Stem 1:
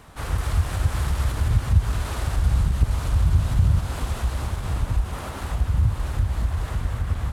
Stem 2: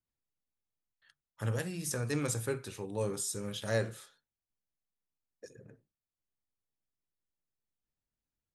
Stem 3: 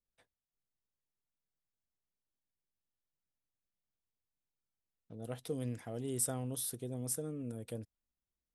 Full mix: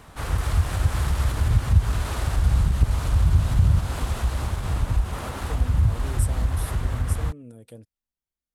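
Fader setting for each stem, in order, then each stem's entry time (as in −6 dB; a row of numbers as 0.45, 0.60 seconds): +0.5 dB, muted, −1.5 dB; 0.00 s, muted, 0.00 s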